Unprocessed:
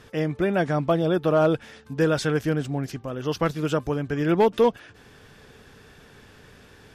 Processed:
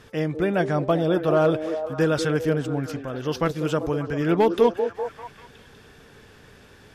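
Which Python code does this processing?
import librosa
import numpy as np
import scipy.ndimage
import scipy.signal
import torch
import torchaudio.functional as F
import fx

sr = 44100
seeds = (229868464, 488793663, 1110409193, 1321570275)

y = fx.echo_stepped(x, sr, ms=195, hz=380.0, octaves=0.7, feedback_pct=70, wet_db=-5.5)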